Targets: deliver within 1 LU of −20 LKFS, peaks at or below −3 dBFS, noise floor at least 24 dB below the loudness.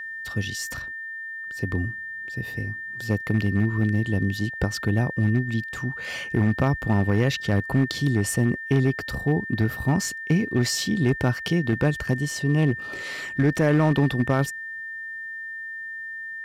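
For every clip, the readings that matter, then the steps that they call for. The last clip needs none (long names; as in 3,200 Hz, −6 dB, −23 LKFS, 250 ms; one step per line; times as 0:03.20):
share of clipped samples 0.7%; peaks flattened at −13.5 dBFS; interfering tone 1,800 Hz; level of the tone −32 dBFS; integrated loudness −25.0 LKFS; sample peak −13.5 dBFS; target loudness −20.0 LKFS
→ clipped peaks rebuilt −13.5 dBFS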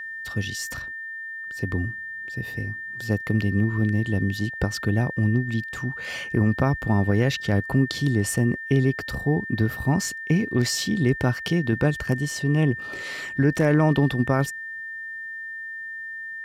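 share of clipped samples 0.0%; interfering tone 1,800 Hz; level of the tone −32 dBFS
→ notch filter 1,800 Hz, Q 30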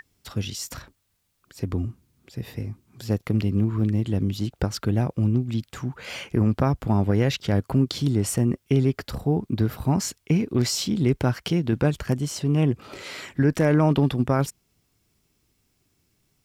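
interfering tone none found; integrated loudness −24.5 LKFS; sample peak −9.0 dBFS; target loudness −20.0 LKFS
→ level +4.5 dB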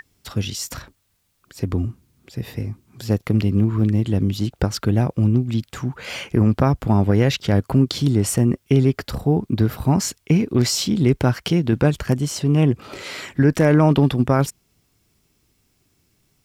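integrated loudness −20.0 LKFS; sample peak −4.5 dBFS; background noise floor −66 dBFS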